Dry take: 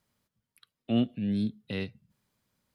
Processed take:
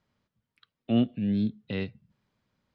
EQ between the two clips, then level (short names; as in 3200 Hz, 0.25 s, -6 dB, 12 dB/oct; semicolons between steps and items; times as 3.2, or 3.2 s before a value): air absorption 150 m; +2.5 dB